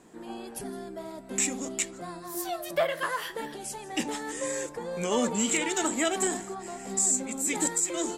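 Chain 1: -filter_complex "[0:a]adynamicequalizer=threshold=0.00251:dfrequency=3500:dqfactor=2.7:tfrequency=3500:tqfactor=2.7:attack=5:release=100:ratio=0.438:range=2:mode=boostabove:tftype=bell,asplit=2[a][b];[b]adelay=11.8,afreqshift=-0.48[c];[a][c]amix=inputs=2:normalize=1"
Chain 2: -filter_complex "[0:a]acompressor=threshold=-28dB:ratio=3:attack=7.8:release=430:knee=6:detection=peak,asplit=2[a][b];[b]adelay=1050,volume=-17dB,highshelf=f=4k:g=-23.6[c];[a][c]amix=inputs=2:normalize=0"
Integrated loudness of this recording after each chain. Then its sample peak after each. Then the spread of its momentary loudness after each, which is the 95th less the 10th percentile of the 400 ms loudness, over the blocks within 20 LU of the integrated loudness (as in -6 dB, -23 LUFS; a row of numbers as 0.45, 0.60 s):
-32.0, -33.5 LUFS; -16.0, -17.0 dBFS; 14, 8 LU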